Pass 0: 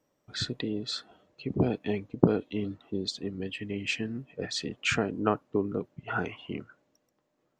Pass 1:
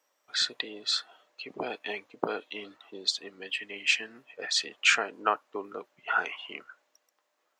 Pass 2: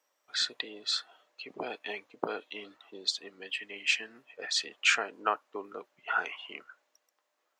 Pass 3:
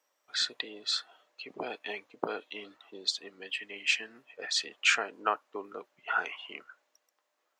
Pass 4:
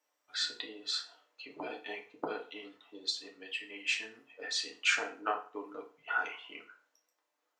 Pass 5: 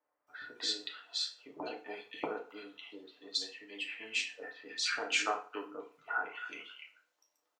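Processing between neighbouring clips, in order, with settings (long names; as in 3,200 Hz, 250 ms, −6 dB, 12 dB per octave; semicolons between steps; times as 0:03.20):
high-pass filter 920 Hz 12 dB per octave; level +6.5 dB
low-shelf EQ 180 Hz −4.5 dB; level −2.5 dB
no processing that can be heard
feedback delay network reverb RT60 0.39 s, low-frequency decay 0.95×, high-frequency decay 0.85×, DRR 0 dB; level −6.5 dB
multiband delay without the direct sound lows, highs 270 ms, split 1,900 Hz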